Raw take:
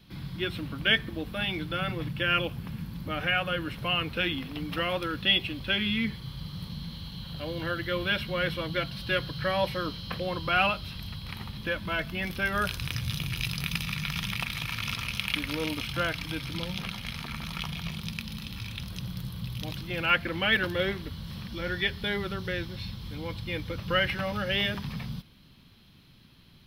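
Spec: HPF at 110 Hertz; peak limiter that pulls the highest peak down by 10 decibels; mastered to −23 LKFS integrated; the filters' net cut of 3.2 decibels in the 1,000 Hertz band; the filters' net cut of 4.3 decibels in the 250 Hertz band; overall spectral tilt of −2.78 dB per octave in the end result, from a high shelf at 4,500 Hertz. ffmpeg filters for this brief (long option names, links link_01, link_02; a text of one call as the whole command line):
ffmpeg -i in.wav -af "highpass=110,equalizer=frequency=250:width_type=o:gain=-6,equalizer=frequency=1000:width_type=o:gain=-4,highshelf=frequency=4500:gain=-7,volume=12dB,alimiter=limit=-10dB:level=0:latency=1" out.wav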